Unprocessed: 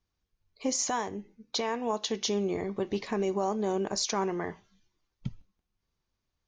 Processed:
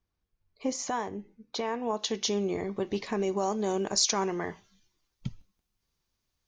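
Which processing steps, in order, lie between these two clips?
high shelf 3300 Hz -8 dB, from 1.99 s +2 dB, from 3.37 s +8 dB

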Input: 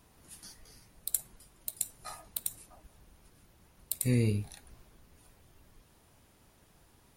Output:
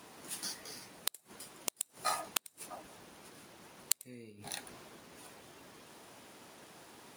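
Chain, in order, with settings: median filter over 3 samples; HPF 250 Hz 12 dB/oct; flipped gate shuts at -27 dBFS, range -30 dB; gain +11.5 dB

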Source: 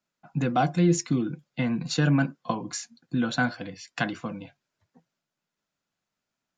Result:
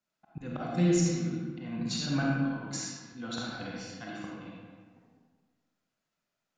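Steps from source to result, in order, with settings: auto swell 0.251 s; digital reverb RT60 1.6 s, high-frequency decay 0.65×, pre-delay 10 ms, DRR -4 dB; gain -5.5 dB

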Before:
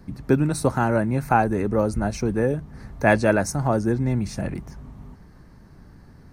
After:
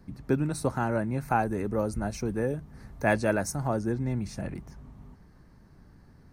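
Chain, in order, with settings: 1.28–3.73 high shelf 9800 Hz +8 dB; gain -7 dB

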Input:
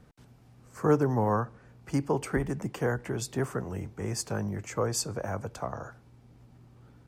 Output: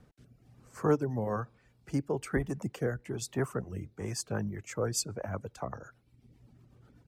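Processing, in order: reverb removal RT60 0.91 s; rotary speaker horn 1.1 Hz, later 8 Hz, at 3.87

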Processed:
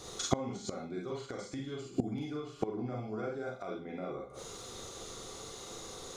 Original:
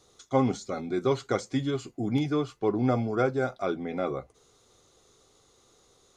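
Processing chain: limiter -22 dBFS, peak gain reduction 10 dB; Schroeder reverb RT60 0.32 s, combs from 33 ms, DRR -1.5 dB; flipped gate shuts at -26 dBFS, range -24 dB; gain +12.5 dB

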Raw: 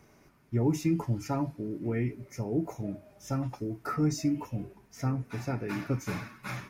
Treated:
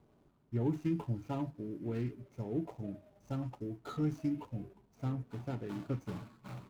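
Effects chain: median filter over 25 samples; gain -6 dB

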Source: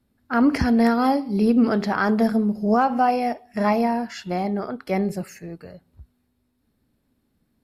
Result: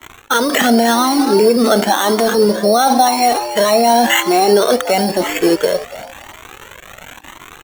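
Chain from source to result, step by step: G.711 law mismatch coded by A; HPF 280 Hz 24 dB/oct; crackle 240/s -44 dBFS; Chebyshev low-pass 4000 Hz, order 10; reverse; compressor 6:1, threshold -33 dBFS, peak gain reduction 16.5 dB; reverse; sample-and-hold 9×; frequency-shifting echo 0.286 s, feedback 31%, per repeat +100 Hz, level -17 dB; maximiser +33.5 dB; cascading flanger rising 0.95 Hz; gain +1.5 dB

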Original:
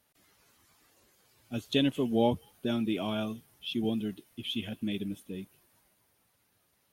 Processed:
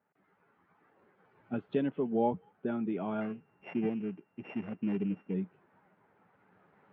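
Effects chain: 3.21–5.34 sample sorter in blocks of 16 samples; recorder AGC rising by 6 dB/s; speaker cabinet 140–2000 Hz, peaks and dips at 180 Hz +9 dB, 420 Hz +6 dB, 840 Hz +6 dB, 1400 Hz +5 dB; gain -6 dB

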